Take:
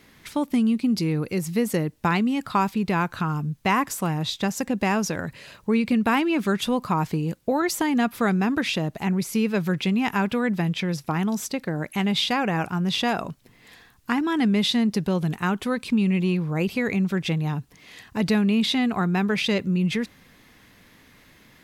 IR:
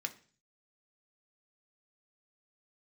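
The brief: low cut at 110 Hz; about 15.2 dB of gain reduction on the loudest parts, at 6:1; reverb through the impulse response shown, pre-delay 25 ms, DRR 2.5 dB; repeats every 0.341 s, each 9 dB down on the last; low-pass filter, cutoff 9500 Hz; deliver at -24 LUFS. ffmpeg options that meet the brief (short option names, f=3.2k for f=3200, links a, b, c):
-filter_complex "[0:a]highpass=110,lowpass=9.5k,acompressor=threshold=-35dB:ratio=6,aecho=1:1:341|682|1023|1364:0.355|0.124|0.0435|0.0152,asplit=2[a][b];[1:a]atrim=start_sample=2205,adelay=25[c];[b][c]afir=irnorm=-1:irlink=0,volume=-3dB[d];[a][d]amix=inputs=2:normalize=0,volume=12dB"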